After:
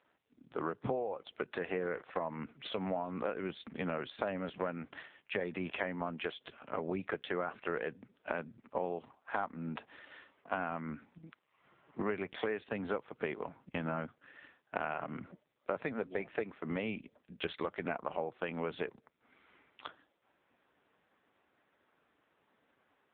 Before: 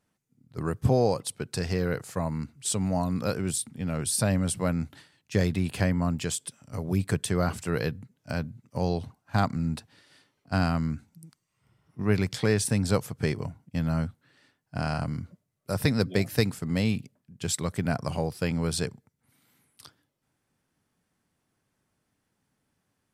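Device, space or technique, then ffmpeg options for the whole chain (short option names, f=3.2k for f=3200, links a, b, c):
voicemail: -af "highpass=390,lowpass=2.8k,acompressor=threshold=-44dB:ratio=8,volume=12dB" -ar 8000 -c:a libopencore_amrnb -b:a 5900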